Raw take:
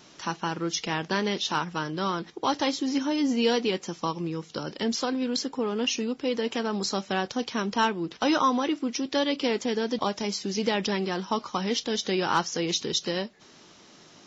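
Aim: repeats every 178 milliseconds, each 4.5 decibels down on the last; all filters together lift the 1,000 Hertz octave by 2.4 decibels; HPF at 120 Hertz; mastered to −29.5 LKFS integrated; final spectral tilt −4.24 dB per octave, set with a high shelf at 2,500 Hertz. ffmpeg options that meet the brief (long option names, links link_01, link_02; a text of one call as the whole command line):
ffmpeg -i in.wav -af "highpass=120,equalizer=frequency=1000:width_type=o:gain=3.5,highshelf=frequency=2500:gain=-4,aecho=1:1:178|356|534|712|890|1068|1246|1424|1602:0.596|0.357|0.214|0.129|0.0772|0.0463|0.0278|0.0167|0.01,volume=-3.5dB" out.wav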